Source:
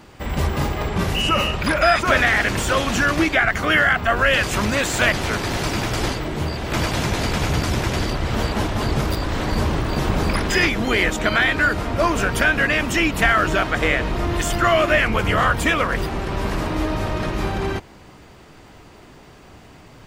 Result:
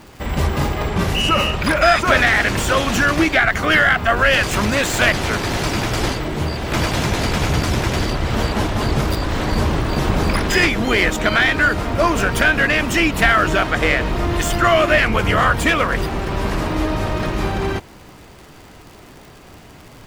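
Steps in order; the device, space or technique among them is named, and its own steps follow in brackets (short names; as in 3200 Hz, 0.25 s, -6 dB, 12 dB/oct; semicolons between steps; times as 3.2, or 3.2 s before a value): record under a worn stylus (tracing distortion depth 0.03 ms; crackle 98/s -35 dBFS; pink noise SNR 36 dB); gain +2.5 dB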